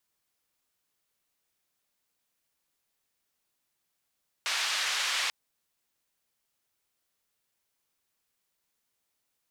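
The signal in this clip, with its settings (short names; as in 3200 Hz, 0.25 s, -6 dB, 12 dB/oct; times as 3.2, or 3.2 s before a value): noise band 1200–4300 Hz, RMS -30 dBFS 0.84 s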